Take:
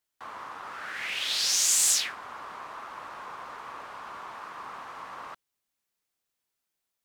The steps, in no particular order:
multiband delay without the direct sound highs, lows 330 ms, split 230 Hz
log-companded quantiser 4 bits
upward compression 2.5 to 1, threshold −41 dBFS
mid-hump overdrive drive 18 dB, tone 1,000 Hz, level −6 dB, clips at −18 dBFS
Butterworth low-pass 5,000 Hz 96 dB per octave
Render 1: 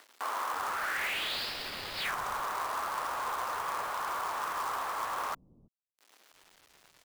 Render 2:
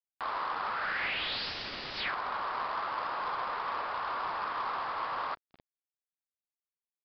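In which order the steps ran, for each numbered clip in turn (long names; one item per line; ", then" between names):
mid-hump overdrive, then upward compression, then Butterworth low-pass, then log-companded quantiser, then multiband delay without the direct sound
multiband delay without the direct sound, then mid-hump overdrive, then log-companded quantiser, then Butterworth low-pass, then upward compression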